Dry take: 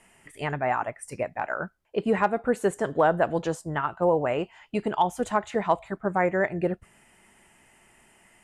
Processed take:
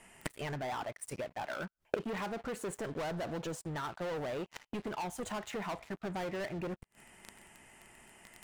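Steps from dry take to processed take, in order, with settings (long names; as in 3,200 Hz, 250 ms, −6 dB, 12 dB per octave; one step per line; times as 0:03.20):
leveller curve on the samples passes 5
downward compressor 3 to 1, threshold −17 dBFS, peak gain reduction 4 dB
gate with flip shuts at −25 dBFS, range −30 dB
level +10 dB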